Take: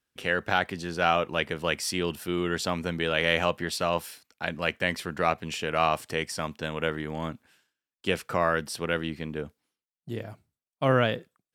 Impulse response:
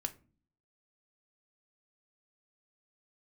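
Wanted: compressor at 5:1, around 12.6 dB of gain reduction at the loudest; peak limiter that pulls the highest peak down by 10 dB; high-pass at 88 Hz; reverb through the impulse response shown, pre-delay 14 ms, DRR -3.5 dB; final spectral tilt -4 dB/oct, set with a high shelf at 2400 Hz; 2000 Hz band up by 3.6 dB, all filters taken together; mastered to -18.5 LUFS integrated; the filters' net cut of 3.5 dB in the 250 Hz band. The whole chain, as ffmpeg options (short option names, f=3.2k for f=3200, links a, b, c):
-filter_complex "[0:a]highpass=88,equalizer=f=250:t=o:g=-5,equalizer=f=2k:t=o:g=7.5,highshelf=f=2.4k:g=-6,acompressor=threshold=-32dB:ratio=5,alimiter=level_in=1dB:limit=-24dB:level=0:latency=1,volume=-1dB,asplit=2[a][b];[1:a]atrim=start_sample=2205,adelay=14[c];[b][c]afir=irnorm=-1:irlink=0,volume=3.5dB[d];[a][d]amix=inputs=2:normalize=0,volume=16.5dB"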